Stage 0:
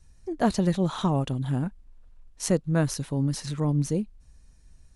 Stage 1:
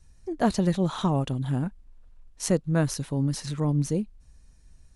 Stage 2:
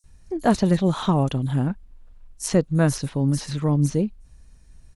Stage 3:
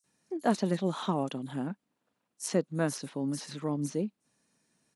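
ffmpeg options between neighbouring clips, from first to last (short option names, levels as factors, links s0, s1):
-af anull
-filter_complex "[0:a]acrossover=split=6000[s0][s1];[s0]adelay=40[s2];[s2][s1]amix=inputs=2:normalize=0,volume=1.68"
-af "highpass=f=190:w=0.5412,highpass=f=190:w=1.3066,volume=0.422"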